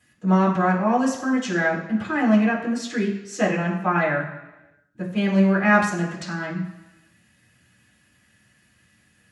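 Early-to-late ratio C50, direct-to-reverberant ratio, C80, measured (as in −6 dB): 6.0 dB, −8.5 dB, 9.0 dB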